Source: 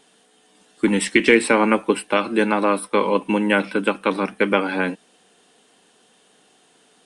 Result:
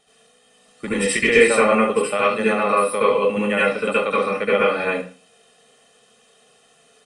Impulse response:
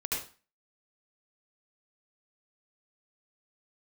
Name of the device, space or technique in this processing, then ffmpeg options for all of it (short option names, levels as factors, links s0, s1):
microphone above a desk: -filter_complex "[0:a]aecho=1:1:1.6:0.77[s0];[1:a]atrim=start_sample=2205[s1];[s0][s1]afir=irnorm=-1:irlink=0,volume=0.562"